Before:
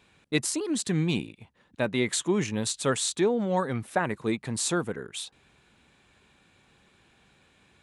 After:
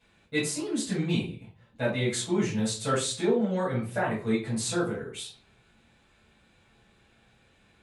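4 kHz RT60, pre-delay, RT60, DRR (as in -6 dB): 0.30 s, 6 ms, 0.40 s, -8.5 dB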